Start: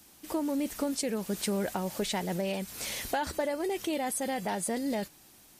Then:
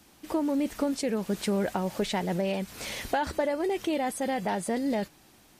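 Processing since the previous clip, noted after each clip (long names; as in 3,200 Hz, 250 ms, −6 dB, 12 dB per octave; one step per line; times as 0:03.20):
high-shelf EQ 5,500 Hz −11 dB
level +3.5 dB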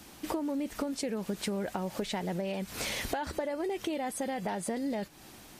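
downward compressor 6 to 1, threshold −38 dBFS, peak gain reduction 14.5 dB
level +6.5 dB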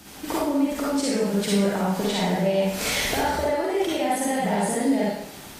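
convolution reverb RT60 0.80 s, pre-delay 39 ms, DRR −6.5 dB
level +3.5 dB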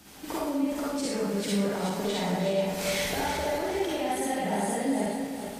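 feedback delay that plays each chunk backwards 211 ms, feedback 66%, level −7 dB
level −6.5 dB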